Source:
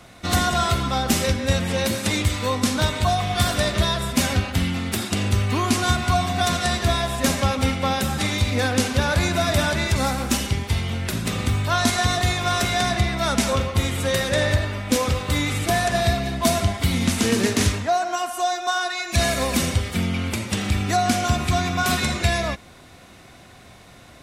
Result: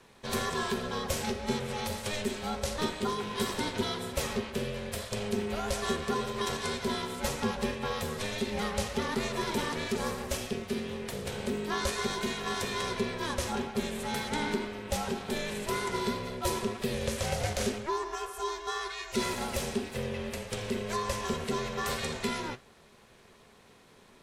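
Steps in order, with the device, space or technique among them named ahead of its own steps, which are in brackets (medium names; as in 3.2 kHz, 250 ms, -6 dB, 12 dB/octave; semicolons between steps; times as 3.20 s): alien voice (ring modulator 310 Hz; flange 1.9 Hz, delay 5.9 ms, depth 8.3 ms, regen +78%); trim -4 dB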